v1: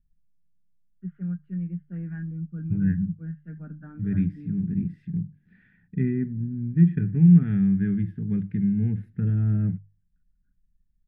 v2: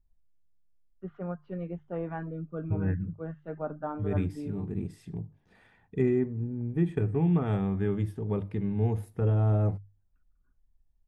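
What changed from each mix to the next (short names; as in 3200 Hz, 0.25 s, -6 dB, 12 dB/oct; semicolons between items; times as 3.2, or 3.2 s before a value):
first voice +4.0 dB; master: remove EQ curve 100 Hz 0 dB, 180 Hz +12 dB, 570 Hz -20 dB, 1100 Hz -21 dB, 1600 Hz +4 dB, 8000 Hz -28 dB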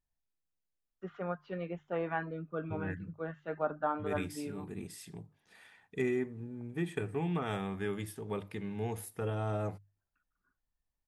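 first voice +4.5 dB; master: add tilt +4 dB/oct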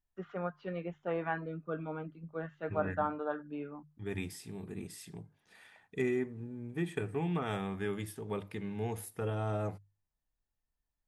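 first voice: entry -0.85 s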